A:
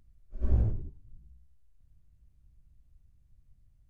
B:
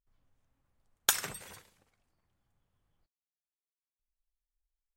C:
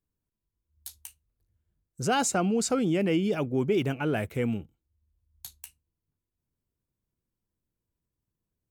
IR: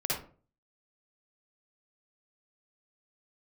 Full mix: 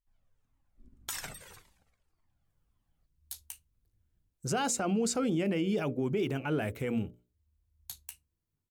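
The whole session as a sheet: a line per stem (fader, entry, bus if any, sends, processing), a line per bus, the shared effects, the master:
−12.0 dB, 0.45 s, send −13.5 dB, compressor whose output falls as the input rises −34 dBFS, ratio −1; formant resonators in series i
+2.0 dB, 0.00 s, no send, flanger whose copies keep moving one way falling 1.8 Hz
−0.5 dB, 2.45 s, no send, mains-hum notches 60/120/180/240/300/360/420/480/540/600 Hz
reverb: on, RT60 0.40 s, pre-delay 49 ms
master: brickwall limiter −22.5 dBFS, peak gain reduction 12 dB

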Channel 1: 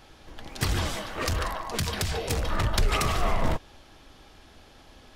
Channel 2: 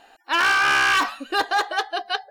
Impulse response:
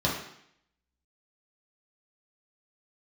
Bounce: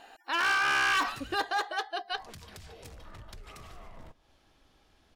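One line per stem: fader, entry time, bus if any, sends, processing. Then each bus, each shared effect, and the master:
−13.0 dB, 0.55 s, muted 0:01.36–0:02.12, no send, echo send −24 dB, downward compressor 4 to 1, threshold −33 dBFS, peak gain reduction 12.5 dB
0:00.91 −1 dB → 0:01.63 −8 dB, 0.00 s, no send, no echo send, no processing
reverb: not used
echo: repeating echo 152 ms, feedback 42%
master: brickwall limiter −22.5 dBFS, peak gain reduction 8.5 dB

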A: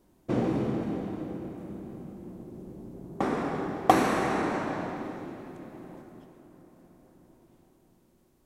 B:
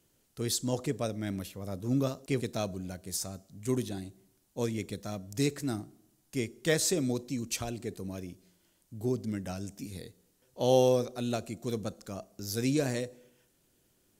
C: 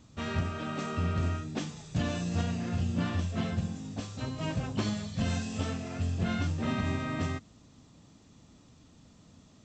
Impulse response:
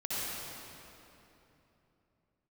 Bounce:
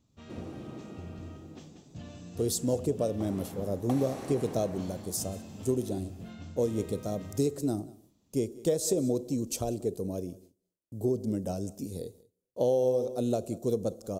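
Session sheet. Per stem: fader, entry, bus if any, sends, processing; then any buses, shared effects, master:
−17.5 dB, 0.00 s, bus A, send −8.5 dB, no echo send, high-shelf EQ 4,200 Hz +9 dB
+2.5 dB, 2.00 s, bus A, no send, echo send −23 dB, downward expander −60 dBFS; graphic EQ with 10 bands 500 Hz +9 dB, 2,000 Hz −11 dB, 4,000 Hz −4 dB
−13.5 dB, 0.00 s, no bus, no send, echo send −8 dB, no processing
bus A: 0.0 dB, noise gate with hold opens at −48 dBFS; downward compressor 6 to 1, threshold −23 dBFS, peak gain reduction 12.5 dB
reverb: on, RT60 3.1 s, pre-delay 55 ms
echo: single-tap delay 187 ms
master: parametric band 1,600 Hz −6.5 dB 1.4 octaves

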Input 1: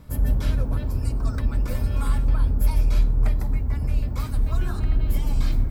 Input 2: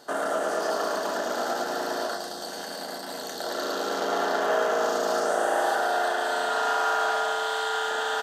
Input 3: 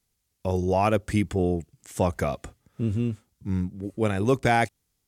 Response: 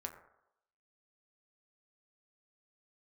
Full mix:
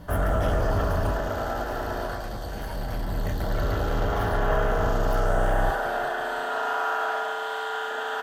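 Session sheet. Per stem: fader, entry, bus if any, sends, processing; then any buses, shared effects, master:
0:01.04 −0.5 dB → 0:01.40 −11 dB → 0:02.50 −11 dB → 0:03.19 −1.5 dB, 0.00 s, send −7 dB, echo send −22.5 dB, EQ curve with evenly spaced ripples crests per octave 1.2, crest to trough 13 dB; gain into a clipping stage and back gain 23.5 dB
−6.0 dB, 0.00 s, send −0.5 dB, no echo send, no processing
−19.0 dB, 1.40 s, no send, echo send −7 dB, lower of the sound and its delayed copy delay 5.2 ms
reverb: on, RT60 0.85 s, pre-delay 6 ms
echo: repeating echo 345 ms, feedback 34%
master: flat-topped bell 6,100 Hz −8.5 dB

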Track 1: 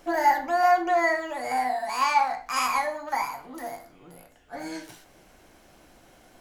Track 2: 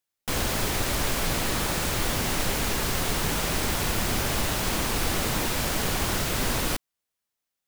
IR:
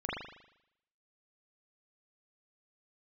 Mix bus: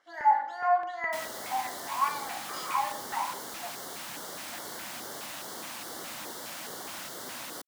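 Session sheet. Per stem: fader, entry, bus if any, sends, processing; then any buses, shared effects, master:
−2.5 dB, 0.00 s, send −11 dB, auto-filter band-pass sine 2.4 Hz 850–3,400 Hz
−11.0 dB, 0.85 s, no send, high-pass filter 320 Hz 12 dB per octave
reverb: on, RT60 0.80 s, pre-delay 39 ms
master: auto-filter notch square 2.4 Hz 420–2,500 Hz

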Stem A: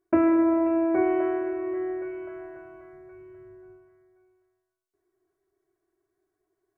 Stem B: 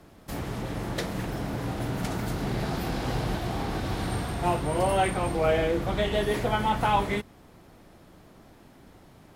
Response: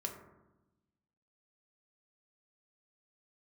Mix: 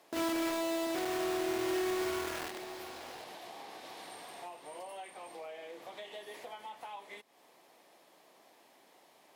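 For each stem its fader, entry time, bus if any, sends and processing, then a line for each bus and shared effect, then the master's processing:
0.0 dB, 0.00 s, send −14.5 dB, echo send −12.5 dB, comb filter 4.3 ms, depth 35%; downward compressor 10 to 1, threshold −32 dBFS, peak gain reduction 15 dB; bit-depth reduction 6 bits, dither none
−2.5 dB, 0.00 s, no send, no echo send, high-pass filter 600 Hz 12 dB per octave; downward compressor 5 to 1, threshold −42 dBFS, peak gain reduction 19 dB; parametric band 1,400 Hz −9.5 dB 0.4 octaves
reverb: on, RT60 1.0 s, pre-delay 3 ms
echo: single-tap delay 737 ms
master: low-shelf EQ 71 Hz −11 dB; brickwall limiter −27 dBFS, peak gain reduction 9.5 dB

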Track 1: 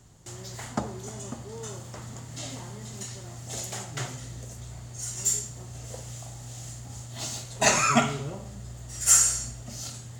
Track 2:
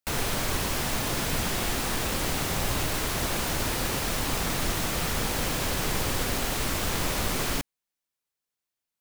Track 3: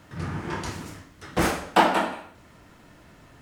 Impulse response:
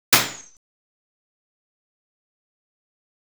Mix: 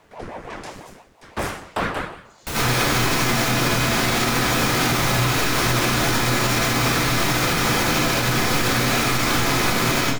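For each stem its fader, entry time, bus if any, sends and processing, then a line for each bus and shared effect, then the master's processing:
−6.0 dB, 1.10 s, send −18 dB, band-pass on a step sequencer 2.6 Hz 980–5,300 Hz
+1.0 dB, 2.40 s, send −14.5 dB, no processing
0.0 dB, 0.00 s, no send, ring modulator whose carrier an LFO sweeps 460 Hz, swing 80%, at 5.9 Hz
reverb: on, RT60 0.45 s, pre-delay 76 ms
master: brickwall limiter −10 dBFS, peak gain reduction 5.5 dB

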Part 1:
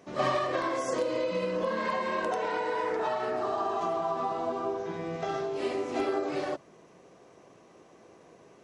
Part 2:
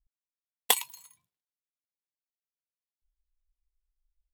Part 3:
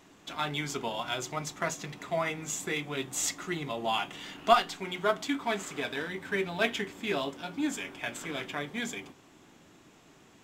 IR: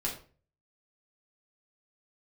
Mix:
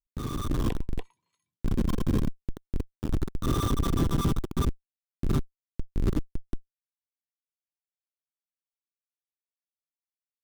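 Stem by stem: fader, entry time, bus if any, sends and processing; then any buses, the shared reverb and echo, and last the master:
−3.0 dB, 0.00 s, bus A, no send, no echo send, high-shelf EQ 5,300 Hz −5 dB; speech leveller within 3 dB 2 s; drawn EQ curve 220 Hz 0 dB, 470 Hz −24 dB, 800 Hz −13 dB, 1,200 Hz +11 dB, 2,000 Hz −10 dB, 3,800 Hz −5 dB, 6,600 Hz −8 dB
−17.5 dB, 0.00 s, no bus, no send, echo send −4 dB, treble cut that deepens with the level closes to 880 Hz, closed at −30.5 dBFS; low-shelf EQ 320 Hz −9 dB
−19.0 dB, 0.95 s, bus A, no send, no echo send, meter weighting curve ITU-R 468; compressor whose output falls as the input rises −34 dBFS, ratio −1
bus A: 0.0 dB, comparator with hysteresis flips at −29 dBFS; brickwall limiter −38.5 dBFS, peak gain reduction 7.5 dB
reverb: not used
echo: single-tap delay 289 ms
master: automatic gain control gain up to 8 dB; low shelf with overshoot 490 Hz +11 dB, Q 1.5

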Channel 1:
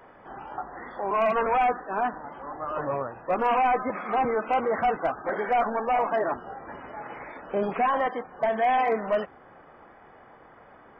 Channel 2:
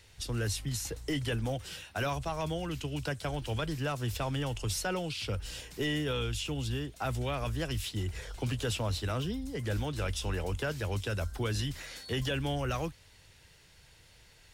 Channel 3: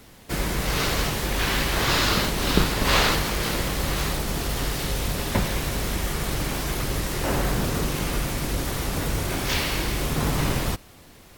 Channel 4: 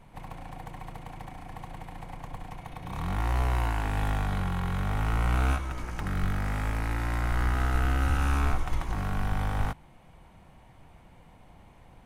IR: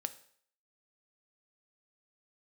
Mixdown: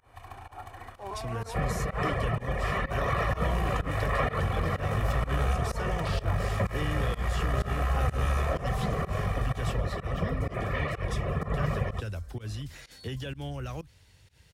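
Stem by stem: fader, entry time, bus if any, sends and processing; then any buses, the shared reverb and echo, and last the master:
−12.0 dB, 0.00 s, no bus, no send, compressor whose output falls as the input rises −26 dBFS
−3.5 dB, 0.95 s, no bus, no send, low-shelf EQ 170 Hz +10 dB; downward compressor, threshold −28 dBFS, peak gain reduction 7.5 dB
−2.0 dB, 1.25 s, bus A, no send, notch filter 1,600 Hz, Q 8.1; reverb reduction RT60 0.95 s; Chebyshev low-pass filter 1,900 Hz, order 3
−4.0 dB, 0.00 s, bus A, no send, brick-wall band-stop 120–660 Hz
bus A: 0.0 dB, comb filter 1.7 ms, depth 91%; brickwall limiter −17.5 dBFS, peak gain reduction 11.5 dB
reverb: not used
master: high-pass filter 56 Hz; fake sidechain pumping 126 BPM, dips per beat 1, −23 dB, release 120 ms

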